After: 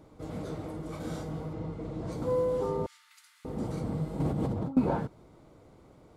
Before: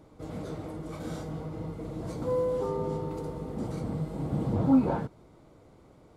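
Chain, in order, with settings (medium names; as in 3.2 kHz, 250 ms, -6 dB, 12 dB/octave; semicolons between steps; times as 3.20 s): 1.53–2.12 s: distance through air 58 m; 2.86–3.45 s: steep high-pass 1.6 kHz 36 dB/octave; 4.20–4.77 s: compressor with a negative ratio -32 dBFS, ratio -1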